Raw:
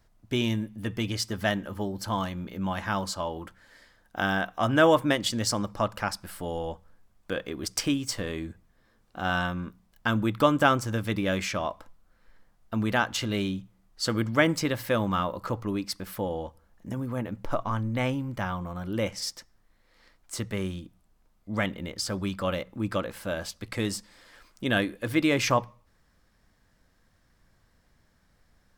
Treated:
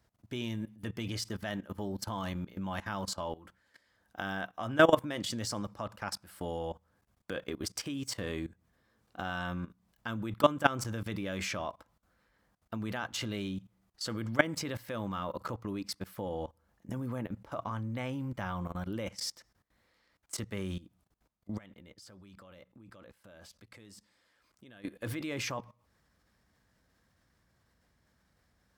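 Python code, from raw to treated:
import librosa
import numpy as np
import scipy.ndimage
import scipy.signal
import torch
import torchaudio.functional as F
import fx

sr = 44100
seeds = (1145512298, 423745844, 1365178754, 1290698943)

y = fx.level_steps(x, sr, step_db=21, at=(21.57, 24.85))
y = scipy.signal.sosfilt(scipy.signal.butter(4, 47.0, 'highpass', fs=sr, output='sos'), y)
y = fx.level_steps(y, sr, step_db=18)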